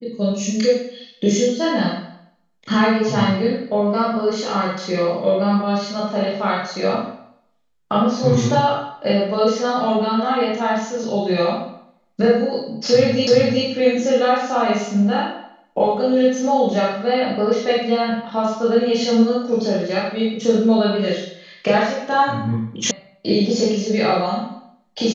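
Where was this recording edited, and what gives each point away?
0:13.27: the same again, the last 0.38 s
0:22.91: cut off before it has died away

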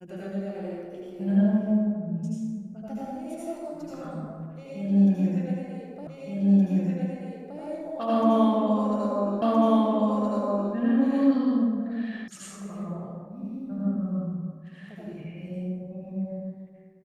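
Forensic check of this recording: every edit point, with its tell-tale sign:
0:06.07: the same again, the last 1.52 s
0:09.42: the same again, the last 1.32 s
0:12.28: cut off before it has died away

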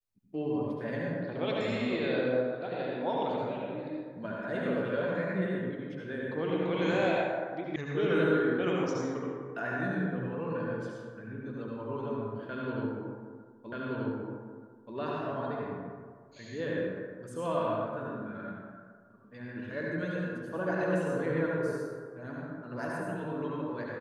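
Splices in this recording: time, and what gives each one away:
0:07.76: cut off before it has died away
0:13.72: the same again, the last 1.23 s

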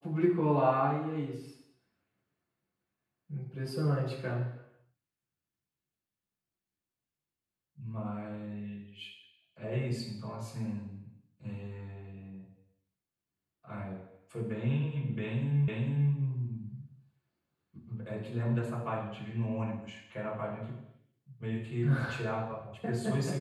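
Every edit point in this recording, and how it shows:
0:15.68: the same again, the last 0.45 s

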